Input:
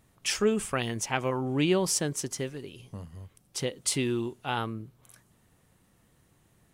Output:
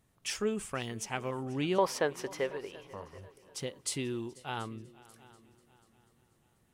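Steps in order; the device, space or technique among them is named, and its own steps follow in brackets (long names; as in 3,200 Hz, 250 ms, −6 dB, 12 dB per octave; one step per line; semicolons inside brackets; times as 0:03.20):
0:01.78–0:03.18: graphic EQ with 10 bands 125 Hz −7 dB, 250 Hz −4 dB, 500 Hz +11 dB, 1,000 Hz +12 dB, 2,000 Hz +8 dB, 4,000 Hz +3 dB, 8,000 Hz −11 dB
multi-head tape echo (echo machine with several playback heads 244 ms, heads second and third, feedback 40%, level −22 dB; tape wow and flutter 24 cents)
level −7 dB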